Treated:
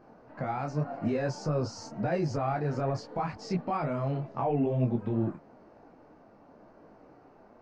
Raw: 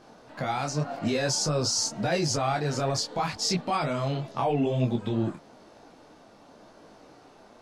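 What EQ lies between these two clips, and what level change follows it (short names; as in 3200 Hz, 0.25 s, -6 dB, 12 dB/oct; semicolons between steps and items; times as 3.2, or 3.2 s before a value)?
tape spacing loss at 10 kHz 30 dB; bell 3500 Hz -12 dB 0.45 oct; -1.0 dB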